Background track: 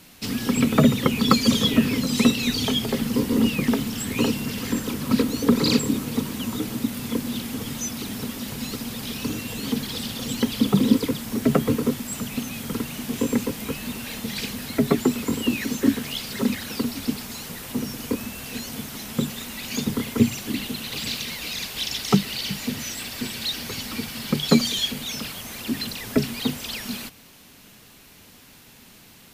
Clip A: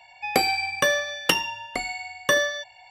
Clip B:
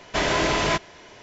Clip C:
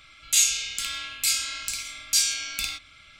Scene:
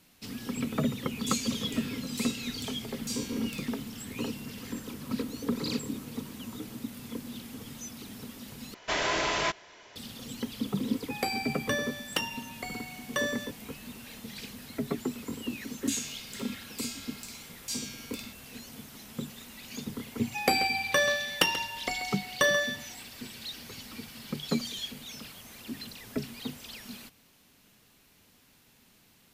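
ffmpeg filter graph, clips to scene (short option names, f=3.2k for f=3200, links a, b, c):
-filter_complex "[3:a]asplit=2[a][b];[1:a]asplit=2[c][d];[0:a]volume=-12.5dB[e];[2:a]lowshelf=f=380:g=-9.5[f];[d]asplit=2[g][h];[h]adelay=134.1,volume=-12dB,highshelf=f=4k:g=-3.02[i];[g][i]amix=inputs=2:normalize=0[j];[e]asplit=2[k][l];[k]atrim=end=8.744[m];[f]atrim=end=1.22,asetpts=PTS-STARTPTS,volume=-4.5dB[n];[l]atrim=start=9.956[o];[a]atrim=end=3.19,asetpts=PTS-STARTPTS,volume=-16dB,afade=t=in:d=0.004:c=hsin,afade=t=out:st=3.186:d=0.004:c=hsin,adelay=940[p];[c]atrim=end=2.9,asetpts=PTS-STARTPTS,volume=-10dB,afade=t=in:d=0.004:c=hsin,afade=t=out:st=2.896:d=0.004:c=hsin,adelay=10870[q];[b]atrim=end=3.19,asetpts=PTS-STARTPTS,volume=-14.5dB,afade=t=in:d=0.004:c=hsin,afade=t=out:st=3.186:d=0.004:c=hsin,adelay=15550[r];[j]atrim=end=2.9,asetpts=PTS-STARTPTS,volume=-4dB,afade=t=in:d=0.004:c=hsin,afade=t=out:st=2.896:d=0.004:c=hsin,adelay=20120[s];[m][n]acrossfade=d=0.004:c1=hsin:c2=hsin[t];[t][o]acrossfade=d=0.004:c1=hsin:c2=hsin[u];[u][p][q][r][s]amix=inputs=5:normalize=0"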